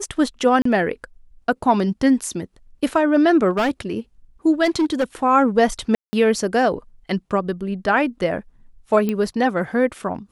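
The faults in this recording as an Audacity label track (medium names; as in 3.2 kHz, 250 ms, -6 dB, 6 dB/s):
0.620000	0.650000	dropout 34 ms
3.500000	3.700000	clipped -15.5 dBFS
4.640000	5.040000	clipped -14.5 dBFS
5.950000	6.130000	dropout 180 ms
9.090000	9.090000	pop -11 dBFS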